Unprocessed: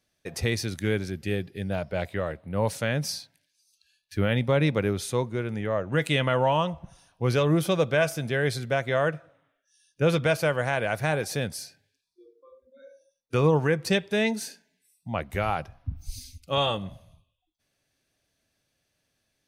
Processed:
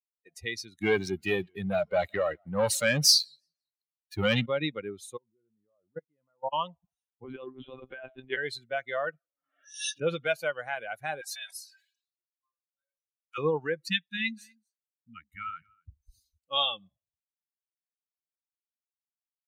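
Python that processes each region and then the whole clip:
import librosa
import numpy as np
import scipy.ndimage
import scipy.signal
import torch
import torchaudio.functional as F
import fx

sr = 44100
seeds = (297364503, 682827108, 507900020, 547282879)

y = fx.chain(x, sr, fx.leveller(passes=3),
    fx.echo_warbled(ms=172, feedback_pct=41, rate_hz=2.8, cents=184, wet_db=-21.0), at=(0.81, 4.46))
y = fx.chain(y, sr, fx.lowpass(hz=1100.0, slope=12),
    fx.level_steps(step_db=22), at=(5.17, 6.53))
y = fx.chain(y, sr, fx.over_compress(threshold_db=-25.0, ratio=-0.5),
    fx.lpc_monotone(seeds[0], pitch_hz=130.0, order=10), at=(7.24, 8.37))
y = fx.chain(y, sr, fx.high_shelf(hz=6400.0, db=-9.0),
    fx.pre_swell(db_per_s=56.0), at=(9.05, 10.21))
y = fx.chain(y, sr, fx.highpass(hz=750.0, slope=24),
    fx.comb(ms=3.1, depth=0.78),
    fx.sustainer(db_per_s=54.0), at=(11.21, 13.38))
y = fx.chain(y, sr, fx.brickwall_bandstop(low_hz=320.0, high_hz=1200.0),
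    fx.high_shelf(hz=4200.0, db=-4.0),
    fx.echo_single(ms=245, db=-14.5), at=(13.9, 16.39))
y = fx.bin_expand(y, sr, power=2.0)
y = fx.dynamic_eq(y, sr, hz=4200.0, q=0.86, threshold_db=-49.0, ratio=4.0, max_db=7)
y = fx.highpass(y, sr, hz=330.0, slope=6)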